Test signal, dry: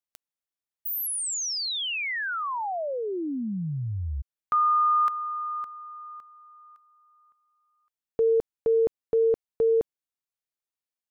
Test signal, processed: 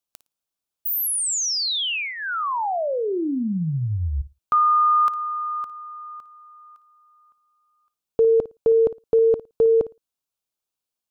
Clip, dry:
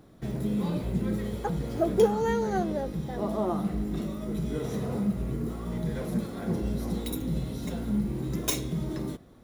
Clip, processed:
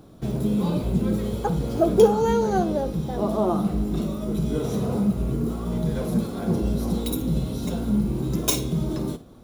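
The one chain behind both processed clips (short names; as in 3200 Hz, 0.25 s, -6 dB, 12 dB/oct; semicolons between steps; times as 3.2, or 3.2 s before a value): bell 1900 Hz -10.5 dB 0.4 oct; flutter echo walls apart 9.6 m, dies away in 0.22 s; gain +6 dB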